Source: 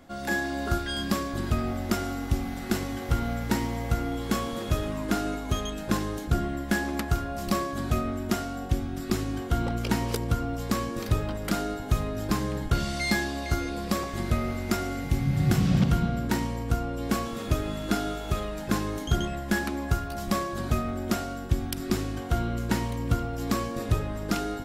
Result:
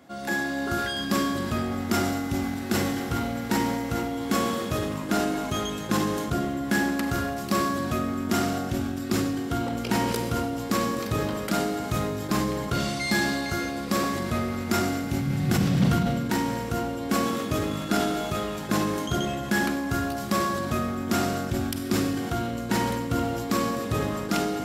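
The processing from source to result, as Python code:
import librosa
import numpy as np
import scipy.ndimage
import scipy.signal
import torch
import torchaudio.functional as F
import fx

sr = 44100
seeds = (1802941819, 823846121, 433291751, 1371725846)

y = scipy.signal.sosfilt(scipy.signal.butter(2, 120.0, 'highpass', fs=sr, output='sos'), x)
y = fx.rev_schroeder(y, sr, rt60_s=2.1, comb_ms=32, drr_db=6.5)
y = fx.sustainer(y, sr, db_per_s=26.0)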